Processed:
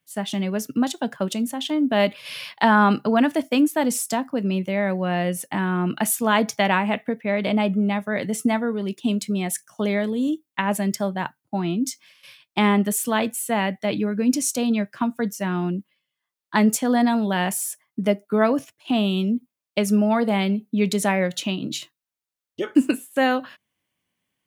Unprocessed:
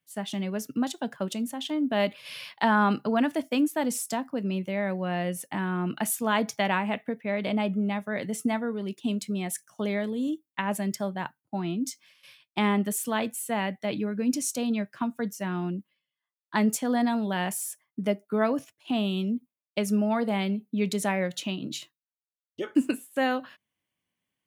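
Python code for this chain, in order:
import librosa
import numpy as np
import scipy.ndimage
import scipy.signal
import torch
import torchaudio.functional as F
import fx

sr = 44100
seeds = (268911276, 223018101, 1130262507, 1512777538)

y = F.gain(torch.from_numpy(x), 6.0).numpy()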